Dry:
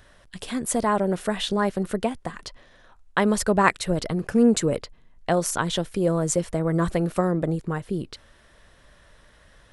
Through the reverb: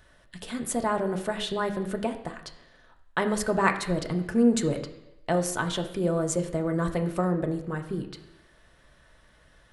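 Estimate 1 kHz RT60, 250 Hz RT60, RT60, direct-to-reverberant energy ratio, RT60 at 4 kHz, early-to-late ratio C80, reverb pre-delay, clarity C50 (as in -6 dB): 0.85 s, 0.85 s, 0.85 s, 4.0 dB, 0.90 s, 12.5 dB, 3 ms, 10.5 dB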